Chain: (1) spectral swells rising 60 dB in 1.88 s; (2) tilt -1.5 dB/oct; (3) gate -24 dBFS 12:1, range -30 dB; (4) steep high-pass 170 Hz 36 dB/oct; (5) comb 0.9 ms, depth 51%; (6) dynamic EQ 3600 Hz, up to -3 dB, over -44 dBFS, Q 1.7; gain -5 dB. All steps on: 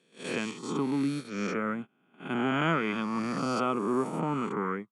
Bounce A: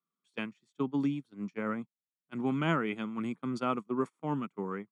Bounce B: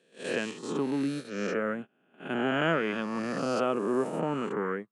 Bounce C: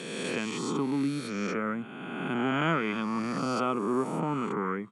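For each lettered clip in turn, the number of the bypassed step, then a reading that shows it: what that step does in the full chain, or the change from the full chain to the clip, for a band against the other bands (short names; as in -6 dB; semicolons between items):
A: 1, 125 Hz band +3.5 dB; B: 5, 500 Hz band +4.5 dB; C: 3, momentary loudness spread change -2 LU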